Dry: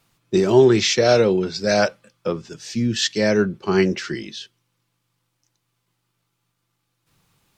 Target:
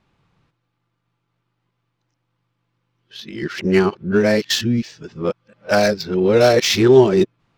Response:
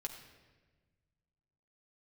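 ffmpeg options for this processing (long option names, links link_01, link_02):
-af "areverse,adynamicsmooth=sensitivity=2.5:basefreq=3000,volume=2.5dB"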